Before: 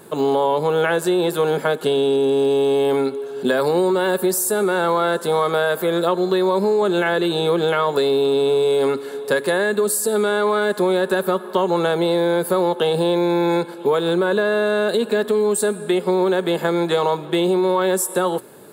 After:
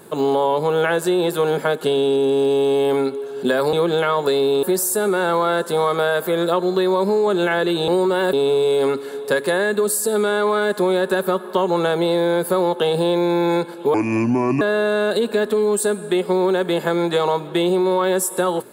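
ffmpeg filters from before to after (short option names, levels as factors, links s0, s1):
-filter_complex "[0:a]asplit=7[s0][s1][s2][s3][s4][s5][s6];[s0]atrim=end=3.732[s7];[s1]atrim=start=7.428:end=8.332[s8];[s2]atrim=start=4.178:end=7.432[s9];[s3]atrim=start=3.728:end=4.182[s10];[s4]atrim=start=8.328:end=13.944[s11];[s5]atrim=start=13.94:end=14.39,asetpts=PTS-STARTPTS,asetrate=29547,aresample=44100,atrim=end_sample=29619,asetpts=PTS-STARTPTS[s12];[s6]atrim=start=14.386[s13];[s7][s8]acrossfade=d=0.004:c1=hsin:c2=hsin[s14];[s14][s9]acrossfade=d=0.004:c1=hsin:c2=hsin[s15];[s15][s10]acrossfade=d=0.004:c1=hsin:c2=hsin[s16];[s16][s11]acrossfade=d=0.004:c1=hsin:c2=hsin[s17];[s17][s12]acrossfade=d=0.004:c1=hsin:c2=hsin[s18];[s18][s13]acrossfade=d=0.004:c1=hsin:c2=hsin"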